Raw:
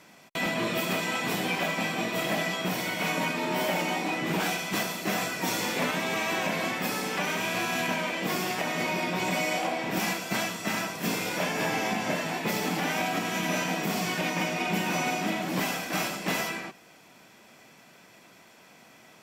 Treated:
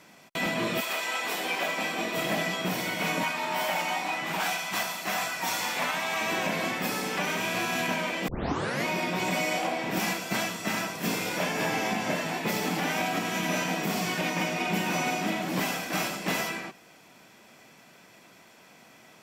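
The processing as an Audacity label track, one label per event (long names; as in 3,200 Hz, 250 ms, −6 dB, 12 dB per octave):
0.800000	2.160000	high-pass filter 760 Hz → 210 Hz
3.230000	6.210000	low shelf with overshoot 580 Hz −8 dB, Q 1.5
8.280000	8.280000	tape start 0.57 s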